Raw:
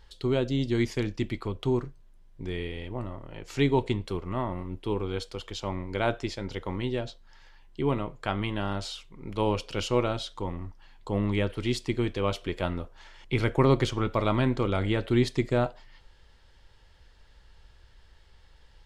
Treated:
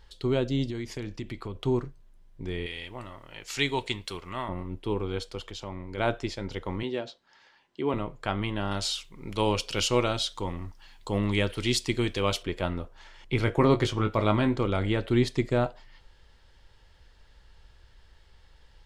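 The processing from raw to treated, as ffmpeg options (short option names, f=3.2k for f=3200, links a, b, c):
-filter_complex "[0:a]asettb=1/sr,asplit=3[a][b][c];[a]atrim=end=0.704[d];[b]atrim=start=0.7:end=1.62,asetpts=PTS-STARTPTS,afade=t=in:d=0.004:c=qsin,afade=t=out:st=0.916:d=0.004:c=qsin,acompressor=threshold=-32dB:ratio=4:attack=3.2:release=140:knee=1:detection=peak[e];[c]atrim=start=1.616[f];[d][e]acrossfade=d=0.004:c1=hsin:c2=qsin[g];[g][f]acrossfade=d=0.004:c1=qsin:c2=hsin,asettb=1/sr,asplit=3[h][i][j];[h]atrim=end=2.664[k];[i]atrim=start=2.66:end=4.49,asetpts=PTS-STARTPTS,afade=t=in:d=0.004:c=qsin,afade=t=out:st=1.826:d=0.004:c=qsin,tiltshelf=f=1.1k:g=-9[l];[j]atrim=start=4.486[m];[k][l]acrossfade=d=0.004:c1=hsin:c2=qsin[n];[n][m]acrossfade=d=0.004:c1=qsin:c2=hsin,asplit=3[o][p][q];[o]afade=t=out:st=5.48:d=0.02[r];[p]acompressor=threshold=-37dB:ratio=2:attack=3.2:release=140:knee=1:detection=peak,afade=t=in:st=5.48:d=0.02,afade=t=out:st=5.97:d=0.02[s];[q]afade=t=in:st=5.97:d=0.02[t];[r][s][t]amix=inputs=3:normalize=0,asettb=1/sr,asplit=3[u][v][w];[u]atrim=end=6.834[x];[v]atrim=start=6.83:end=7.94,asetpts=PTS-STARTPTS,afade=t=in:d=0.004:c=qsin,afade=t=out:st=1.106:d=0.004:c=qsin,highpass=230,lowpass=6.9k[y];[w]atrim=start=7.936[z];[x][y]acrossfade=d=0.004:c1=hsin:c2=qsin[aa];[aa][z]acrossfade=d=0.004:c1=qsin:c2=hsin,asettb=1/sr,asplit=3[ab][ac][ad];[ab]atrim=end=8.714[ae];[ac]atrim=start=8.71:end=12.43,asetpts=PTS-STARTPTS,afade=t=in:d=0.004:c=qsin,afade=t=out:st=3.716:d=0.004:c=qsin,highshelf=f=2.5k:g=10.5[af];[ad]atrim=start=12.426[ag];[ae][af]acrossfade=d=0.004:c1=hsin:c2=qsin[ah];[ah][ag]acrossfade=d=0.004:c1=qsin:c2=hsin,asettb=1/sr,asplit=3[ai][aj][ak];[ai]atrim=end=13.454[al];[aj]atrim=start=13.45:end=14.58,asetpts=PTS-STARTPTS,afade=t=in:d=0.004:c=qsin,afade=t=out:st=1.126:d=0.004:c=qsin,asplit=2[am][an];[an]adelay=19,volume=-8.5dB[ao];[am][ao]amix=inputs=2:normalize=0,atrim=end_sample=49833[ap];[ak]atrim=start=14.576[aq];[al][ap]acrossfade=d=0.004:c1=hsin:c2=qsin[ar];[ar][aq]acrossfade=d=0.004:c1=qsin:c2=hsin"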